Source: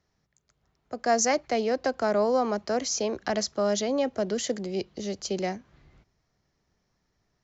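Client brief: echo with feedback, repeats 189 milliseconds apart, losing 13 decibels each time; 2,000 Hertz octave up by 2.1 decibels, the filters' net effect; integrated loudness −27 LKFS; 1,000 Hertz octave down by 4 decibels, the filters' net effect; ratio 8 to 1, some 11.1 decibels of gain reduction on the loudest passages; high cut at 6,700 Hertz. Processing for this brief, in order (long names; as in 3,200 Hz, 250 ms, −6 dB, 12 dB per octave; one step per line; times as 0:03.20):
low-pass filter 6,700 Hz
parametric band 1,000 Hz −7.5 dB
parametric band 2,000 Hz +5 dB
downward compressor 8 to 1, threshold −33 dBFS
repeating echo 189 ms, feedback 22%, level −13 dB
level +10.5 dB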